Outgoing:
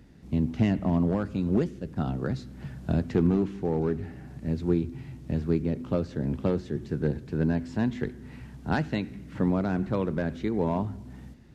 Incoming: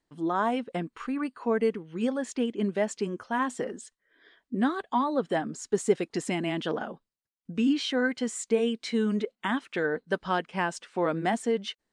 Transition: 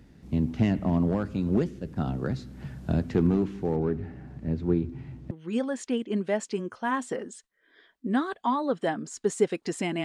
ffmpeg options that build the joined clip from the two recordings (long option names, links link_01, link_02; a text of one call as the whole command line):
ffmpeg -i cue0.wav -i cue1.wav -filter_complex "[0:a]asettb=1/sr,asplit=3[link_01][link_02][link_03];[link_01]atrim=end=3.764[link_04];[link_02]atrim=start=3.76:end=5.31,asetpts=PTS-STARTPTS,afade=type=in:duration=0.004:curve=qsin,afade=type=out:start_time=1.546:duration=0.004:curve=qsin,lowpass=frequency=2100:poles=1[link_05];[link_03]atrim=start=5.306[link_06];[link_04][link_05]acrossfade=duration=0.004:curve1=hsin:curve2=qsin[link_07];[link_07][link_06]acrossfade=duration=0.004:curve1=qsin:curve2=hsin,apad=whole_dur=10.04,atrim=end=10.04,atrim=end=5.312[link_08];[1:a]atrim=start=1.788:end=6.52[link_09];[link_08][link_09]acrossfade=duration=0.004:curve1=hsin:curve2=hsin" out.wav